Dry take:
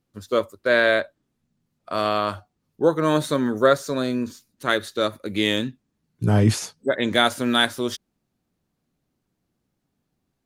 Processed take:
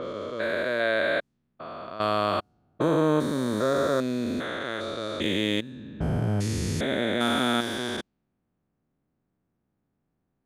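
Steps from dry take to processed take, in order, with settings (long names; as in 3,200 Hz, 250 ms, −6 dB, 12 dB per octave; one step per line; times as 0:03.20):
spectrum averaged block by block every 400 ms
low-pass that shuts in the quiet parts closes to 1,800 Hz, open at −24.5 dBFS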